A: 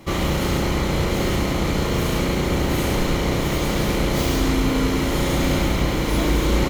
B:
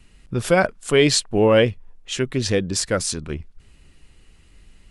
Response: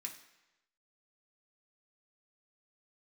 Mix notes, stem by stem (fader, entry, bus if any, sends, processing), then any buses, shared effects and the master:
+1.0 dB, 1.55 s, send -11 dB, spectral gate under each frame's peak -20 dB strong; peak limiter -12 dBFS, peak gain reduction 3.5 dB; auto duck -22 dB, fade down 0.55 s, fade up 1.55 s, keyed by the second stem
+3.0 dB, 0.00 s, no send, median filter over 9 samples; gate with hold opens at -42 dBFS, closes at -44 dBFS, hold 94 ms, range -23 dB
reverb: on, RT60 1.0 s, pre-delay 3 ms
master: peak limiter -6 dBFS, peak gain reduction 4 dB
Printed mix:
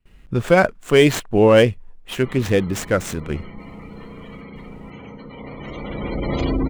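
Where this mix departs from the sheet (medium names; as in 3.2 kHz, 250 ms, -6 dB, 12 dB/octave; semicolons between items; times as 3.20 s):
stem A: entry 1.55 s -> 2.15 s; master: missing peak limiter -6 dBFS, peak gain reduction 4 dB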